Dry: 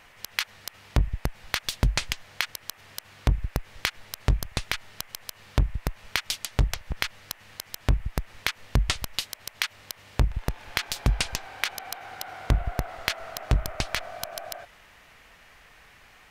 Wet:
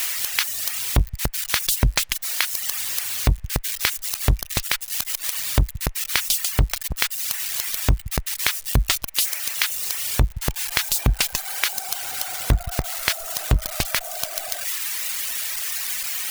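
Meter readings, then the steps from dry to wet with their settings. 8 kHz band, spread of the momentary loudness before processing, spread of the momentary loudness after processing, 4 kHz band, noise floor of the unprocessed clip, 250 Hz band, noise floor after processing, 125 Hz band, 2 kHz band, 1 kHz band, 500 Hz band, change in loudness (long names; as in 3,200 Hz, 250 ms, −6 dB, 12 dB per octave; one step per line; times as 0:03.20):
+13.5 dB, 11 LU, 5 LU, +7.0 dB, −54 dBFS, +4.0 dB, −39 dBFS, +3.5 dB, +5.0 dB, +3.5 dB, +3.5 dB, +7.5 dB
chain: spike at every zero crossing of −19 dBFS
reverb reduction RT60 1 s
level +4 dB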